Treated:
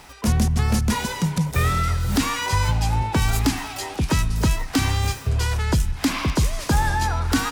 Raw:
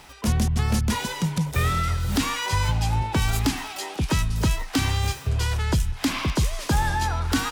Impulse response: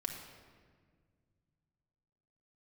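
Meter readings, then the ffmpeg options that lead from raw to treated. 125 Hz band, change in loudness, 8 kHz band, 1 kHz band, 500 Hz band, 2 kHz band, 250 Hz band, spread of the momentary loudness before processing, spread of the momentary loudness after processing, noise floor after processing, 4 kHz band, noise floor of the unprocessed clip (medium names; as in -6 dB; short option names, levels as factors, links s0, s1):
+2.0 dB, +2.0 dB, +2.5 dB, +2.5 dB, +2.5 dB, +2.0 dB, +3.0 dB, 3 LU, 3 LU, -36 dBFS, +1.0 dB, -39 dBFS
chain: -filter_complex "[0:a]equalizer=f=3200:w=2.2:g=-3,asplit=2[s0][s1];[1:a]atrim=start_sample=2205[s2];[s1][s2]afir=irnorm=-1:irlink=0,volume=0.158[s3];[s0][s3]amix=inputs=2:normalize=0,volume=1.19"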